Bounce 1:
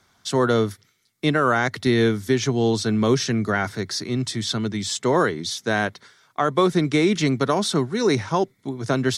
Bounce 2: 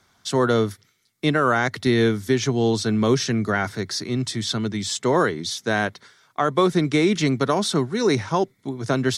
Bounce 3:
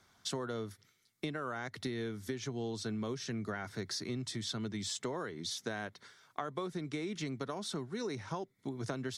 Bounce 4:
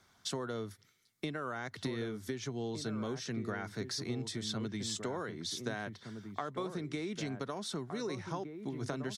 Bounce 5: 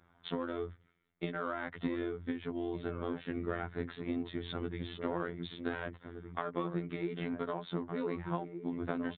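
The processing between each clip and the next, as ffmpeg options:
-af anull
-af "acompressor=threshold=-29dB:ratio=12,volume=-6dB"
-filter_complex "[0:a]asplit=2[a][b];[b]adelay=1516,volume=-7dB,highshelf=f=4k:g=-34.1[c];[a][c]amix=inputs=2:normalize=0"
-af "adynamicsmooth=sensitivity=6:basefreq=1.9k,afftfilt=real='hypot(re,im)*cos(PI*b)':imag='0':win_size=2048:overlap=0.75,aresample=8000,aresample=44100,volume=6dB"

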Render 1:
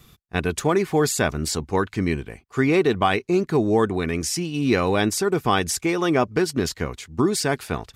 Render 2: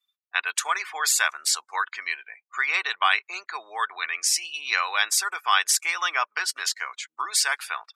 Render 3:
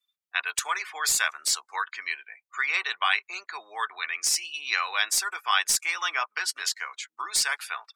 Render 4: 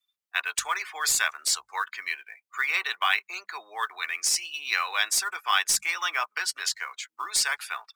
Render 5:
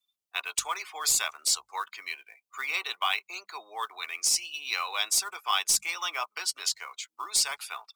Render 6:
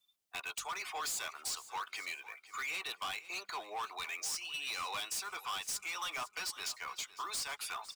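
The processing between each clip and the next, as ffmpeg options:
-af "afftdn=nr=35:nf=-43,highpass=f=1.1k:w=0.5412,highpass=f=1.1k:w=1.3066,volume=4.5dB"
-filter_complex "[0:a]acrossover=split=440|1400|4300[a][b][c][d];[b]flanger=delay=8.7:depth=7.9:regen=6:speed=0.9:shape=triangular[e];[d]aeval=exprs='clip(val(0),-1,0.119)':c=same[f];[a][e][c][f]amix=inputs=4:normalize=0,volume=-1.5dB"
-filter_complex "[0:a]bandreject=f=50:t=h:w=6,bandreject=f=100:t=h:w=6,bandreject=f=150:t=h:w=6,bandreject=f=200:t=h:w=6,acrossover=split=840|5600[a][b][c];[b]acrusher=bits=6:mode=log:mix=0:aa=0.000001[d];[a][d][c]amix=inputs=3:normalize=0"
-af "equalizer=f=1.7k:t=o:w=0.58:g=-13.5"
-af "acompressor=threshold=-35dB:ratio=3,asoftclip=type=tanh:threshold=-39dB,aecho=1:1:506|1012|1518:0.15|0.0419|0.0117,volume=4dB"

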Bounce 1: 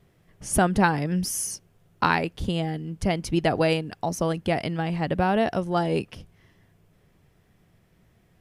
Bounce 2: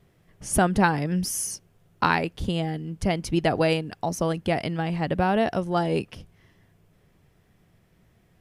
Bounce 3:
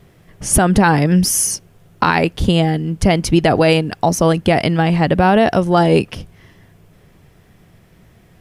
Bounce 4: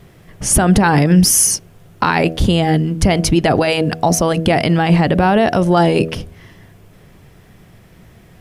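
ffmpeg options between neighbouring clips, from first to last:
-af anull
-af "alimiter=level_in=13.5dB:limit=-1dB:release=50:level=0:latency=1,volume=-1dB"
-af "alimiter=limit=-7.5dB:level=0:latency=1:release=31,bandreject=f=80.63:t=h:w=4,bandreject=f=161.26:t=h:w=4,bandreject=f=241.89:t=h:w=4,bandreject=f=322.52:t=h:w=4,bandreject=f=403.15:t=h:w=4,bandreject=f=483.78:t=h:w=4,bandreject=f=564.41:t=h:w=4,bandreject=f=645.04:t=h:w=4,bandreject=f=725.67:t=h:w=4,volume=4.5dB"

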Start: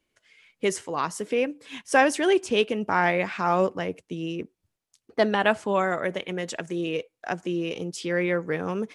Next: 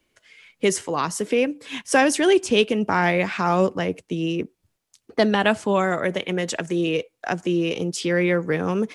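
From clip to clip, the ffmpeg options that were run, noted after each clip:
-filter_complex "[0:a]acrossover=split=330|3000[a][b][c];[b]acompressor=threshold=-35dB:ratio=1.5[d];[a][d][c]amix=inputs=3:normalize=0,volume=7dB"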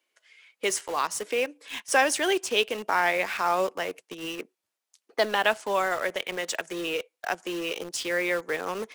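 -filter_complex "[0:a]highpass=560,asplit=2[a][b];[b]acrusher=bits=4:mix=0:aa=0.000001,volume=-6dB[c];[a][c]amix=inputs=2:normalize=0,volume=-5.5dB"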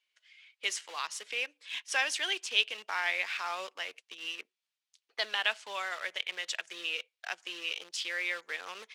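-af "bandpass=f=3.3k:t=q:w=1.2:csg=0"

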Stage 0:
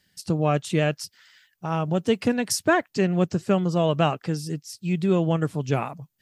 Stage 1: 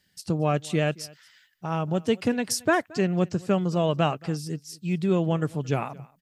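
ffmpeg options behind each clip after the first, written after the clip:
-af "aecho=1:1:224:0.0668,volume=-2dB"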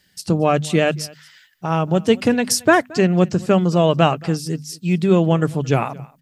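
-af "bandreject=f=50:t=h:w=6,bandreject=f=100:t=h:w=6,bandreject=f=150:t=h:w=6,bandreject=f=200:t=h:w=6,bandreject=f=250:t=h:w=6,volume=8.5dB"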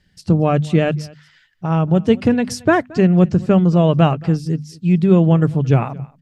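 -af "aemphasis=mode=reproduction:type=bsi,volume=-2dB"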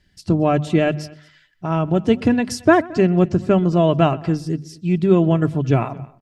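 -filter_complex "[0:a]aecho=1:1:3:0.38,asplit=2[a][b];[b]adelay=125,lowpass=f=2.5k:p=1,volume=-22dB,asplit=2[c][d];[d]adelay=125,lowpass=f=2.5k:p=1,volume=0.37,asplit=2[e][f];[f]adelay=125,lowpass=f=2.5k:p=1,volume=0.37[g];[a][c][e][g]amix=inputs=4:normalize=0,volume=-1dB"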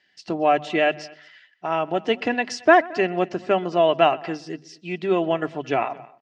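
-af "highpass=420,equalizer=f=750:t=q:w=4:g=6,equalizer=f=1.9k:t=q:w=4:g=7,equalizer=f=2.8k:t=q:w=4:g=6,lowpass=f=6.2k:w=0.5412,lowpass=f=6.2k:w=1.3066,volume=-1.5dB"

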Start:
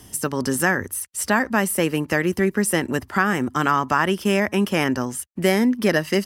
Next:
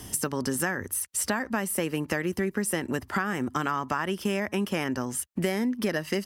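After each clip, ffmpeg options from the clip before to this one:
-af "acompressor=threshold=-30dB:ratio=4,volume=3.5dB"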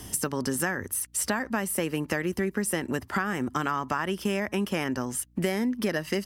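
-af "aeval=exprs='val(0)+0.00112*(sin(2*PI*60*n/s)+sin(2*PI*2*60*n/s)/2+sin(2*PI*3*60*n/s)/3+sin(2*PI*4*60*n/s)/4+sin(2*PI*5*60*n/s)/5)':c=same"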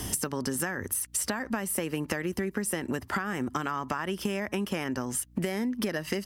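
-af "acompressor=threshold=-35dB:ratio=5,volume=7dB"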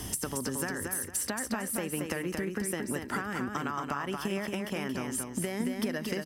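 -af "aecho=1:1:227|454|681|908:0.596|0.161|0.0434|0.0117,volume=-3.5dB"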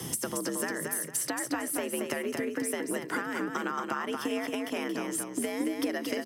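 -af "afreqshift=66,volume=1dB"

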